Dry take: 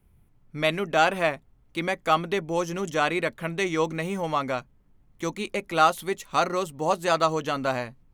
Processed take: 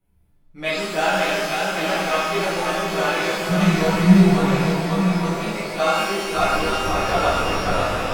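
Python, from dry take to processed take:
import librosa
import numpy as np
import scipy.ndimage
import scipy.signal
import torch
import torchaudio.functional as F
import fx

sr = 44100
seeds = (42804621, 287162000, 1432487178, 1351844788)

p1 = fx.lpc_vocoder(x, sr, seeds[0], excitation='whisper', order=10, at=(6.34, 7.75))
p2 = fx.echo_feedback(p1, sr, ms=546, feedback_pct=50, wet_db=-4.0)
p3 = fx.backlash(p2, sr, play_db=-24.5)
p4 = p2 + (p3 * librosa.db_to_amplitude(-5.5))
p5 = fx.low_shelf_res(p4, sr, hz=250.0, db=10.5, q=3.0, at=(3.49, 4.44))
p6 = p5 + fx.echo_single(p5, sr, ms=854, db=-6.0, dry=0)
p7 = fx.chorus_voices(p6, sr, voices=6, hz=0.45, base_ms=14, depth_ms=4.2, mix_pct=40)
p8 = fx.rev_shimmer(p7, sr, seeds[1], rt60_s=1.2, semitones=12, shimmer_db=-8, drr_db=-8.5)
y = p8 * librosa.db_to_amplitude(-7.5)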